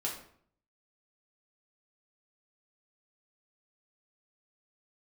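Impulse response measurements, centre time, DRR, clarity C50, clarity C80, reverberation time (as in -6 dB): 29 ms, -3.5 dB, 6.0 dB, 9.5 dB, 0.60 s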